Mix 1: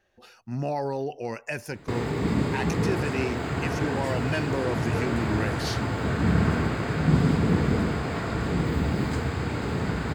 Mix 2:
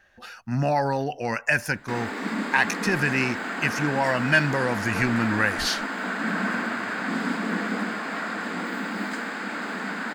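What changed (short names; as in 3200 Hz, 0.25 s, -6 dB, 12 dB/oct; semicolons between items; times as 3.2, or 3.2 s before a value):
speech +7.5 dB; first sound: add steep high-pass 190 Hz 96 dB/oct; master: add fifteen-band EQ 100 Hz -4 dB, 400 Hz -9 dB, 1600 Hz +8 dB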